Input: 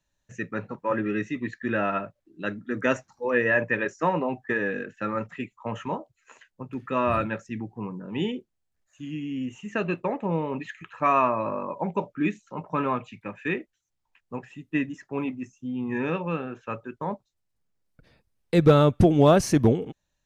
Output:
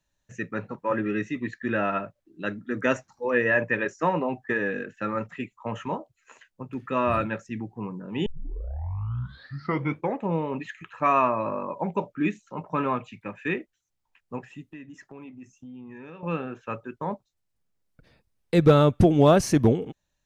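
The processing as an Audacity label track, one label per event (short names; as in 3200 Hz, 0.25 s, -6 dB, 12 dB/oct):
8.260000	8.260000	tape start 1.94 s
14.640000	16.230000	compressor 4:1, threshold -42 dBFS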